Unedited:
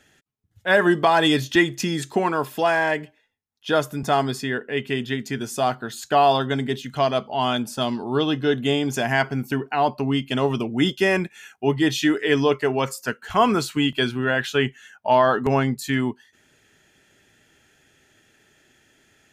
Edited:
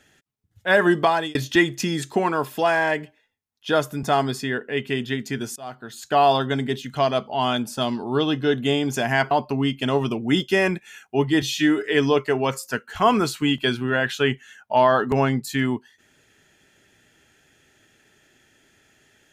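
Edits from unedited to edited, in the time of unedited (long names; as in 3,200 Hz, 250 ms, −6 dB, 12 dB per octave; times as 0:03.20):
0:01.04–0:01.35: fade out
0:05.56–0:06.23: fade in, from −24 dB
0:09.31–0:09.80: remove
0:11.91–0:12.20: time-stretch 1.5×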